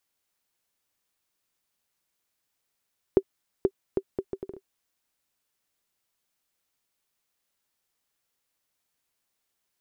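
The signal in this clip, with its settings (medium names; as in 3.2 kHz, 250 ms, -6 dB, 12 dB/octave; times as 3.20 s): bouncing ball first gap 0.48 s, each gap 0.67, 387 Hz, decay 59 ms -7 dBFS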